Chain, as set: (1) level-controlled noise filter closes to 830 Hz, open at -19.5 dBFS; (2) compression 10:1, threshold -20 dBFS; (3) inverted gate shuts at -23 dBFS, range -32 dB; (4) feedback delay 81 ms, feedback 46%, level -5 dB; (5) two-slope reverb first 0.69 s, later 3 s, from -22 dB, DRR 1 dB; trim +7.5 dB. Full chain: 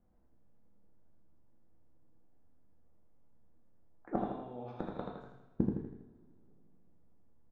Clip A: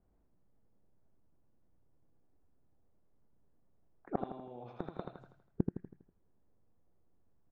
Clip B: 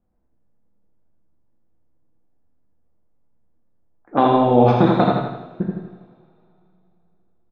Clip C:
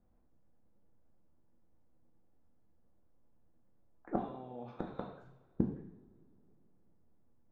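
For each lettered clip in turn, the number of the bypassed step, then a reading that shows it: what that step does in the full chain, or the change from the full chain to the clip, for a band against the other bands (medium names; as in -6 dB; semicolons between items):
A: 5, echo-to-direct 2.0 dB to -4.0 dB; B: 3, momentary loudness spread change -2 LU; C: 4, echo-to-direct 2.0 dB to -1.0 dB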